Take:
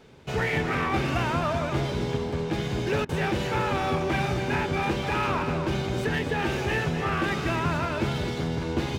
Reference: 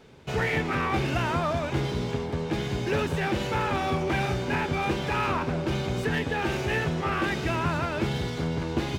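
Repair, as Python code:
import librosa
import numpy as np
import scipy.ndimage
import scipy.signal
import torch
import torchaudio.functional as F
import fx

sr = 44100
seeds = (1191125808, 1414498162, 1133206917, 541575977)

y = fx.fix_interpolate(x, sr, at_s=(3.05,), length_ms=39.0)
y = fx.fix_echo_inverse(y, sr, delay_ms=258, level_db=-8.5)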